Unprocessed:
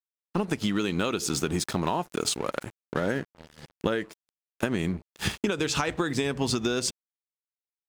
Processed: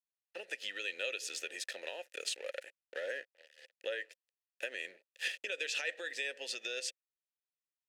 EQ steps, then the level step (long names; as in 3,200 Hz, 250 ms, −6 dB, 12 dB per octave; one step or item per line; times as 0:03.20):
formant filter e
high-pass filter 300 Hz 12 dB per octave
first difference
+17.0 dB